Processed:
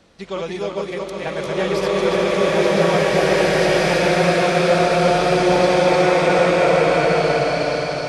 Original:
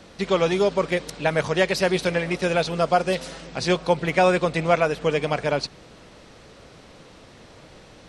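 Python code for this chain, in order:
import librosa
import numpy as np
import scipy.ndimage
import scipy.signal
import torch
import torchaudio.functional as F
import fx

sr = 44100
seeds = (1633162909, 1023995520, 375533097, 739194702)

y = fx.reverse_delay_fb(x, sr, ms=181, feedback_pct=64, wet_db=-2)
y = fx.rev_bloom(y, sr, seeds[0], attack_ms=2090, drr_db=-10.0)
y = y * 10.0 ** (-7.0 / 20.0)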